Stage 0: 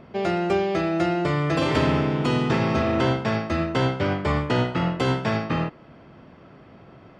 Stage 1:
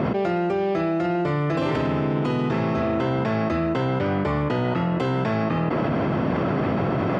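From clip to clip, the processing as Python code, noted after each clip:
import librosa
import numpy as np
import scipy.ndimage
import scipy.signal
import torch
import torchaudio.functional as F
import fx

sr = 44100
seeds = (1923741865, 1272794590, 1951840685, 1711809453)

y = scipy.signal.sosfilt(scipy.signal.butter(2, 96.0, 'highpass', fs=sr, output='sos'), x)
y = fx.high_shelf(y, sr, hz=2800.0, db=-10.5)
y = fx.env_flatten(y, sr, amount_pct=100)
y = F.gain(torch.from_numpy(y), -3.5).numpy()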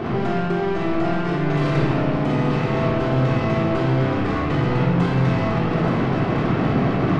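y = 10.0 ** (-26.0 / 20.0) * np.tanh(x / 10.0 ** (-26.0 / 20.0))
y = y + 10.0 ** (-7.0 / 20.0) * np.pad(y, (int(878 * sr / 1000.0), 0))[:len(y)]
y = fx.room_shoebox(y, sr, seeds[0], volume_m3=1600.0, walls='mixed', distance_m=3.5)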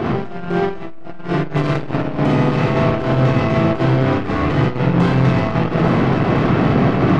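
y = fx.transformer_sat(x, sr, knee_hz=180.0)
y = F.gain(torch.from_numpy(y), 6.0).numpy()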